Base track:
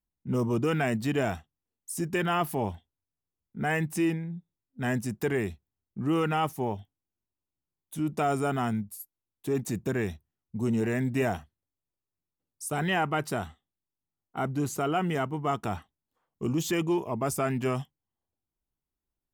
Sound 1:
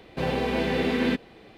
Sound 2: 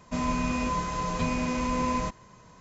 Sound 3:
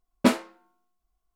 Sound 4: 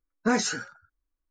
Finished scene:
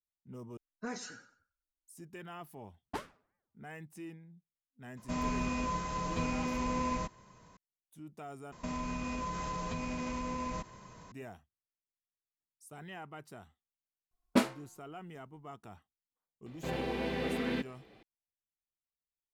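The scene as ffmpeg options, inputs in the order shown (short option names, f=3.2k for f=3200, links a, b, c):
-filter_complex "[3:a]asplit=2[a][b];[2:a]asplit=2[c][d];[0:a]volume=-19.5dB[e];[4:a]aecho=1:1:94|188|282:0.168|0.0487|0.0141[f];[a]aeval=exprs='val(0)*sin(2*PI*480*n/s+480*0.85/3*sin(2*PI*3*n/s))':c=same[g];[d]acompressor=threshold=-34dB:ratio=6:attack=3.2:release=140:knee=1:detection=peak[h];[e]asplit=3[i][j][k];[i]atrim=end=0.574[l];[f]atrim=end=1.3,asetpts=PTS-STARTPTS,volume=-16.5dB[m];[j]atrim=start=1.866:end=8.524[n];[h]atrim=end=2.6[o];[k]atrim=start=11.116[p];[g]atrim=end=1.35,asetpts=PTS-STARTPTS,volume=-17dB,afade=t=in:d=0.004:c=hsin,afade=t=out:st=1.346:d=0.004:c=hsin,adelay=2690[q];[c]atrim=end=2.6,asetpts=PTS-STARTPTS,volume=-6dB,afade=t=in:d=0.004:c=hsin,afade=t=out:st=2.596:d=0.004:c=hsin,adelay=219177S[r];[b]atrim=end=1.35,asetpts=PTS-STARTPTS,volume=-7dB,afade=t=in:d=0.004:c=hsin,afade=t=out:st=1.346:d=0.004:c=hsin,adelay=14110[s];[1:a]atrim=end=1.57,asetpts=PTS-STARTPTS,volume=-9.5dB,afade=t=in:d=0.004:c=hsin,afade=t=out:st=1.566:d=0.004:c=hsin,adelay=16460[t];[l][m]acrossfade=d=0.004:c1=hsin:c2=hsin[u];[u][n]acrossfade=d=0.004:c1=hsin:c2=hsin[v];[v][o]acrossfade=d=0.004:c1=hsin:c2=hsin[w];[w][p]acrossfade=d=0.004:c1=hsin:c2=hsin[x];[x][q][r][s][t]amix=inputs=5:normalize=0"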